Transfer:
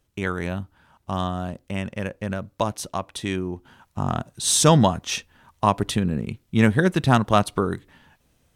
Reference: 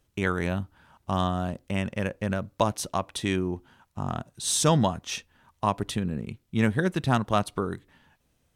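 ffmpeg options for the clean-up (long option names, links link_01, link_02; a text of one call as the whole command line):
ffmpeg -i in.wav -af "asetnsamples=nb_out_samples=441:pad=0,asendcmd='3.65 volume volume -6dB',volume=0dB" out.wav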